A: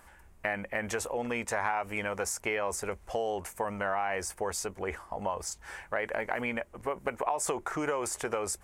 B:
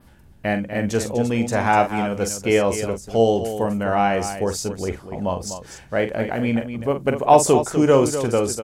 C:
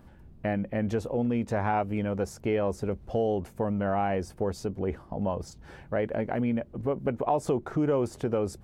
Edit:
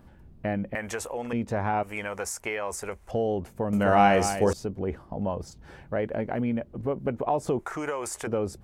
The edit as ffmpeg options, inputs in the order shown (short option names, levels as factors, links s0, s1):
-filter_complex "[0:a]asplit=3[s0][s1][s2];[2:a]asplit=5[s3][s4][s5][s6][s7];[s3]atrim=end=0.752[s8];[s0]atrim=start=0.748:end=1.332[s9];[s4]atrim=start=1.328:end=1.832[s10];[s1]atrim=start=1.828:end=3.112[s11];[s5]atrim=start=3.108:end=3.732[s12];[1:a]atrim=start=3.728:end=4.532[s13];[s6]atrim=start=4.528:end=7.592[s14];[s2]atrim=start=7.588:end=8.272[s15];[s7]atrim=start=8.268[s16];[s8][s9]acrossfade=d=0.004:c1=hsin:c2=hsin[s17];[s17][s10]acrossfade=d=0.004:c1=hsin:c2=hsin[s18];[s18][s11]acrossfade=d=0.004:c1=hsin:c2=hsin[s19];[s19][s12]acrossfade=d=0.004:c1=hsin:c2=hsin[s20];[s20][s13]acrossfade=d=0.004:c1=hsin:c2=hsin[s21];[s21][s14]acrossfade=d=0.004:c1=hsin:c2=hsin[s22];[s22][s15]acrossfade=d=0.004:c1=hsin:c2=hsin[s23];[s23][s16]acrossfade=d=0.004:c1=hsin:c2=hsin"